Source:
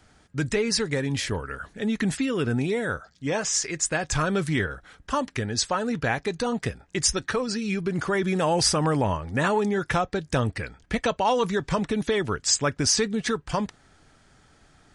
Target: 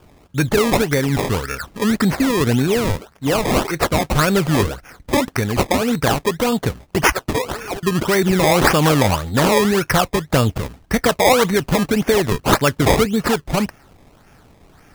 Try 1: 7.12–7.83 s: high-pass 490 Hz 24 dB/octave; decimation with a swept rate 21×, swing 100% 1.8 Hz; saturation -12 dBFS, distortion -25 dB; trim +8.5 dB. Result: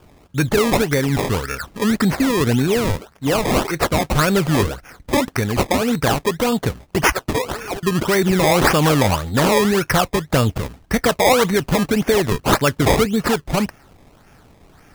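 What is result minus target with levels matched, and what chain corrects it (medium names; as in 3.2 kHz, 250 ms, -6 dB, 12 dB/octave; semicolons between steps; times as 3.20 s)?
saturation: distortion +17 dB
7.12–7.83 s: high-pass 490 Hz 24 dB/octave; decimation with a swept rate 21×, swing 100% 1.8 Hz; saturation -2.5 dBFS, distortion -43 dB; trim +8.5 dB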